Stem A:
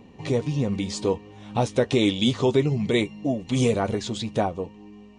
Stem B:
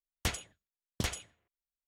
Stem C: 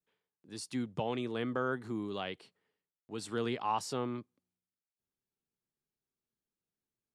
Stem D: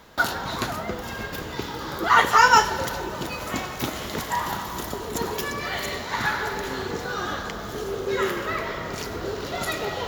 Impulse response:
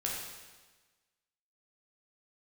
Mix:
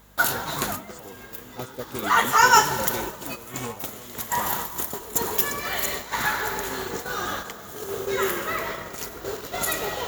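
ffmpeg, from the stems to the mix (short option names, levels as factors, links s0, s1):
-filter_complex "[0:a]volume=0.211[s0];[1:a]adelay=1700,volume=0.211[s1];[2:a]volume=0.447,asplit=2[s2][s3];[3:a]aeval=exprs='val(0)+0.00708*(sin(2*PI*50*n/s)+sin(2*PI*2*50*n/s)/2+sin(2*PI*3*50*n/s)/3+sin(2*PI*4*50*n/s)/4+sin(2*PI*5*50*n/s)/5)':c=same,lowshelf=f=240:g=-6.5,volume=0.944,asplit=2[s4][s5];[s5]volume=0.119[s6];[s3]apad=whole_len=444497[s7];[s4][s7]sidechaincompress=threshold=0.00631:ratio=4:attack=21:release=461[s8];[4:a]atrim=start_sample=2205[s9];[s6][s9]afir=irnorm=-1:irlink=0[s10];[s0][s1][s2][s8][s10]amix=inputs=5:normalize=0,agate=range=0.447:threshold=0.0282:ratio=16:detection=peak,aexciter=amount=3.7:drive=4.2:freq=6800"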